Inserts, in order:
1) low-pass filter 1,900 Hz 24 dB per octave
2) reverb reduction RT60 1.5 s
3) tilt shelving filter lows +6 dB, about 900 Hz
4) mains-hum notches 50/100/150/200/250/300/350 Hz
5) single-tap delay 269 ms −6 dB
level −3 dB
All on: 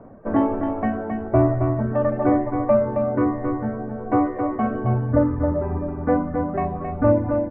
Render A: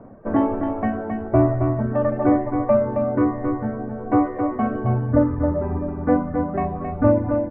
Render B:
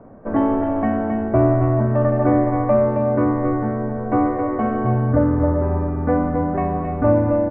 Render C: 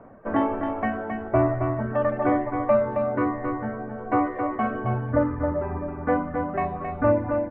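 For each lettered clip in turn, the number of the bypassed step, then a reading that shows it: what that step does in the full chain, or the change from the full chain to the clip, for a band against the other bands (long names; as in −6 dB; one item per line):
4, change in crest factor +1.5 dB
2, change in integrated loudness +3.0 LU
3, 2 kHz band +7.0 dB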